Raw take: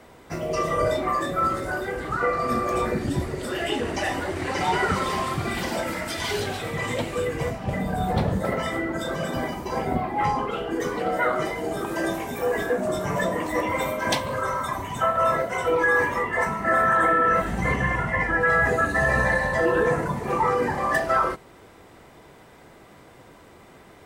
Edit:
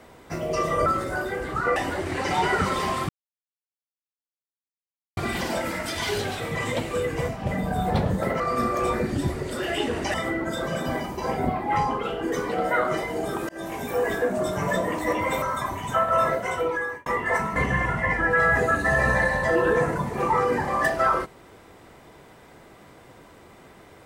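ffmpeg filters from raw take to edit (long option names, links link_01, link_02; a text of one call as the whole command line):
ffmpeg -i in.wav -filter_complex "[0:a]asplit=10[link_01][link_02][link_03][link_04][link_05][link_06][link_07][link_08][link_09][link_10];[link_01]atrim=end=0.862[link_11];[link_02]atrim=start=1.418:end=2.322[link_12];[link_03]atrim=start=4.058:end=5.39,asetpts=PTS-STARTPTS,afade=type=out:start_time=1.328:duration=0.004:curve=hsin,apad=pad_dur=2.08[link_13];[link_04]atrim=start=5.39:end=8.622,asetpts=PTS-STARTPTS,afade=type=in:duration=0.004:curve=hsin[link_14];[link_05]atrim=start=2.318:end=4.062[link_15];[link_06]atrim=start=8.618:end=11.97,asetpts=PTS-STARTPTS,afade=type=out:start_time=3.348:duration=0.004:curve=hsin[link_16];[link_07]atrim=start=11.97:end=13.902,asetpts=PTS-STARTPTS,afade=type=in:duration=0.3[link_17];[link_08]atrim=start=14.488:end=16.13,asetpts=PTS-STARTPTS,afade=type=out:start_time=1.032:duration=0.61[link_18];[link_09]atrim=start=16.13:end=16.632,asetpts=PTS-STARTPTS,afade=type=in:duration=0.004:curve=hsin[link_19];[link_10]atrim=start=17.658[link_20];[link_11][link_12]acrossfade=duration=0.004:curve1=hsin:curve2=hsin[link_21];[link_13][link_14]concat=n=2:v=0:a=1[link_22];[link_21][link_22]acrossfade=duration=0.004:curve1=hsin:curve2=hsin[link_23];[link_23][link_15]acrossfade=duration=0.004:curve1=hsin:curve2=hsin[link_24];[link_16][link_17]concat=n=2:v=0:a=1[link_25];[link_24][link_25]acrossfade=duration=0.004:curve1=hsin:curve2=hsin[link_26];[link_18][link_19]concat=n=2:v=0:a=1[link_27];[link_26][link_27]acrossfade=duration=0.004:curve1=hsin:curve2=hsin[link_28];[link_28][link_20]acrossfade=duration=0.004:curve1=hsin:curve2=hsin" out.wav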